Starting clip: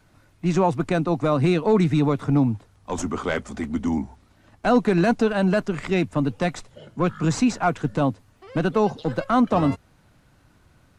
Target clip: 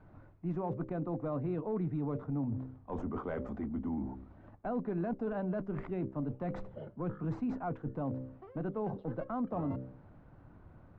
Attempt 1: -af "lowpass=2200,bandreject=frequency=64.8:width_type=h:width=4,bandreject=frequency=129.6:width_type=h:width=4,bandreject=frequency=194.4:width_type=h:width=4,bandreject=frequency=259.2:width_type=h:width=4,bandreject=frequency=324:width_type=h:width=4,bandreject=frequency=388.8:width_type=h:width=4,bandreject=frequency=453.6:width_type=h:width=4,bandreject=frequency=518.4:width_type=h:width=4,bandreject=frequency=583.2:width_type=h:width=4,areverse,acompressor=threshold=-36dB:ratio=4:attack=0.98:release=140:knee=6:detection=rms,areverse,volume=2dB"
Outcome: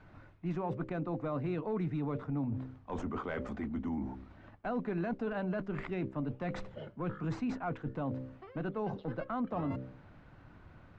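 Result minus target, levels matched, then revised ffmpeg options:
2,000 Hz band +7.0 dB
-af "lowpass=1000,bandreject=frequency=64.8:width_type=h:width=4,bandreject=frequency=129.6:width_type=h:width=4,bandreject=frequency=194.4:width_type=h:width=4,bandreject=frequency=259.2:width_type=h:width=4,bandreject=frequency=324:width_type=h:width=4,bandreject=frequency=388.8:width_type=h:width=4,bandreject=frequency=453.6:width_type=h:width=4,bandreject=frequency=518.4:width_type=h:width=4,bandreject=frequency=583.2:width_type=h:width=4,areverse,acompressor=threshold=-36dB:ratio=4:attack=0.98:release=140:knee=6:detection=rms,areverse,volume=2dB"

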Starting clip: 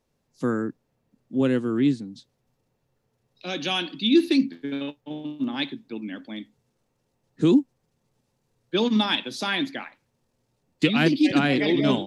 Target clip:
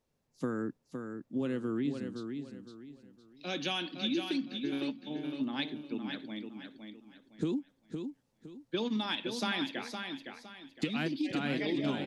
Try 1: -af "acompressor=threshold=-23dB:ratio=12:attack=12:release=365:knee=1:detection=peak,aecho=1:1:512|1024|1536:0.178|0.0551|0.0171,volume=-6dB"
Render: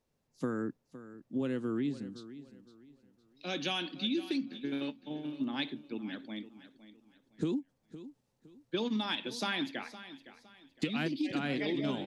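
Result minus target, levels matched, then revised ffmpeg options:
echo-to-direct −8.5 dB
-af "acompressor=threshold=-23dB:ratio=12:attack=12:release=365:knee=1:detection=peak,aecho=1:1:512|1024|1536|2048:0.473|0.147|0.0455|0.0141,volume=-6dB"

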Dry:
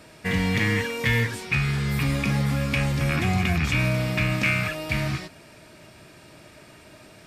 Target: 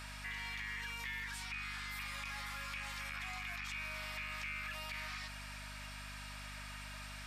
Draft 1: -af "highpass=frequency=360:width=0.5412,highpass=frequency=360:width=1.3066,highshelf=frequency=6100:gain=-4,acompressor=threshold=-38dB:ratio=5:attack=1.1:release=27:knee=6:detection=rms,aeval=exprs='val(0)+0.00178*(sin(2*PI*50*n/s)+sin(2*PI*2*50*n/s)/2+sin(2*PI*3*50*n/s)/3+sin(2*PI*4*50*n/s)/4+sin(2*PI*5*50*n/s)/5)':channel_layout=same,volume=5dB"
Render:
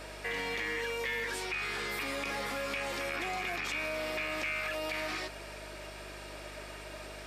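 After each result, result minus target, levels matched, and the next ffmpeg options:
500 Hz band +15.0 dB; downward compressor: peak gain reduction −8 dB
-af "highpass=frequency=960:width=0.5412,highpass=frequency=960:width=1.3066,highshelf=frequency=6100:gain=-4,acompressor=threshold=-38dB:ratio=5:attack=1.1:release=27:knee=6:detection=rms,aeval=exprs='val(0)+0.00178*(sin(2*PI*50*n/s)+sin(2*PI*2*50*n/s)/2+sin(2*PI*3*50*n/s)/3+sin(2*PI*4*50*n/s)/4+sin(2*PI*5*50*n/s)/5)':channel_layout=same,volume=5dB"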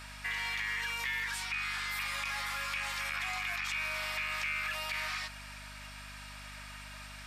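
downward compressor: peak gain reduction −8 dB
-af "highpass=frequency=960:width=0.5412,highpass=frequency=960:width=1.3066,highshelf=frequency=6100:gain=-4,acompressor=threshold=-48dB:ratio=5:attack=1.1:release=27:knee=6:detection=rms,aeval=exprs='val(0)+0.00178*(sin(2*PI*50*n/s)+sin(2*PI*2*50*n/s)/2+sin(2*PI*3*50*n/s)/3+sin(2*PI*4*50*n/s)/4+sin(2*PI*5*50*n/s)/5)':channel_layout=same,volume=5dB"

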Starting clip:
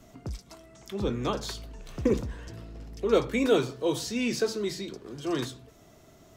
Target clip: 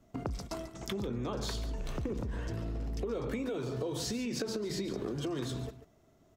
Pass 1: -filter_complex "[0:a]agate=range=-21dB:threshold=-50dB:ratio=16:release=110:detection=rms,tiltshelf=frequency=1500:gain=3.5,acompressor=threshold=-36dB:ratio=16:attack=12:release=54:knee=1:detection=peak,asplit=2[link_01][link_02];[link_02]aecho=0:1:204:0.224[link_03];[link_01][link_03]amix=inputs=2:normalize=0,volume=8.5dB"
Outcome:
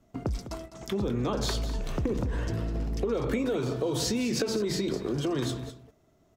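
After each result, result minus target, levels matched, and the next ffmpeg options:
echo 62 ms late; downward compressor: peak gain reduction −7 dB
-filter_complex "[0:a]agate=range=-21dB:threshold=-50dB:ratio=16:release=110:detection=rms,tiltshelf=frequency=1500:gain=3.5,acompressor=threshold=-36dB:ratio=16:attack=12:release=54:knee=1:detection=peak,asplit=2[link_01][link_02];[link_02]aecho=0:1:142:0.224[link_03];[link_01][link_03]amix=inputs=2:normalize=0,volume=8.5dB"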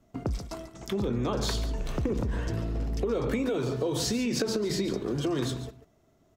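downward compressor: peak gain reduction −7 dB
-filter_complex "[0:a]agate=range=-21dB:threshold=-50dB:ratio=16:release=110:detection=rms,tiltshelf=frequency=1500:gain=3.5,acompressor=threshold=-43.5dB:ratio=16:attack=12:release=54:knee=1:detection=peak,asplit=2[link_01][link_02];[link_02]aecho=0:1:142:0.224[link_03];[link_01][link_03]amix=inputs=2:normalize=0,volume=8.5dB"

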